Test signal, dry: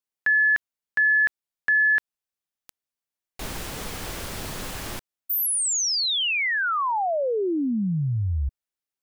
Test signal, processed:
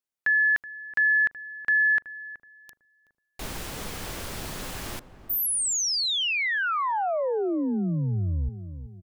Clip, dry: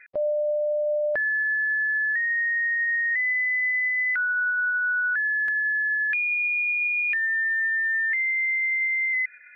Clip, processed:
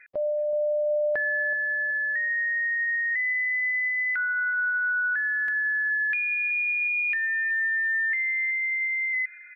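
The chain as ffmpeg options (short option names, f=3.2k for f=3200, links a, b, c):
-filter_complex "[0:a]asplit=2[a][b];[b]adelay=375,lowpass=f=920:p=1,volume=-12dB,asplit=2[c][d];[d]adelay=375,lowpass=f=920:p=1,volume=0.46,asplit=2[e][f];[f]adelay=375,lowpass=f=920:p=1,volume=0.46,asplit=2[g][h];[h]adelay=375,lowpass=f=920:p=1,volume=0.46,asplit=2[i][j];[j]adelay=375,lowpass=f=920:p=1,volume=0.46[k];[a][c][e][g][i][k]amix=inputs=6:normalize=0,volume=-2dB"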